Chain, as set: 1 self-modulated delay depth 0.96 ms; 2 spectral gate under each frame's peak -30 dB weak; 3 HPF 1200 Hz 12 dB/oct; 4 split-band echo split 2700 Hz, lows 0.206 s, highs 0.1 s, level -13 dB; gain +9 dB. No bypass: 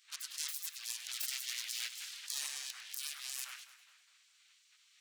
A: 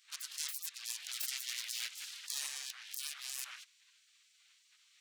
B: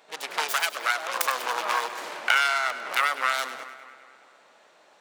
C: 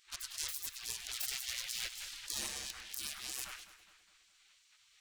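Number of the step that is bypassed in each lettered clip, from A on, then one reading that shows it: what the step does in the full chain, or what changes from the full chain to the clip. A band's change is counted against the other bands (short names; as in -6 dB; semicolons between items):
4, echo-to-direct -11.5 dB to none; 2, 1 kHz band +24.5 dB; 3, 1 kHz band +4.0 dB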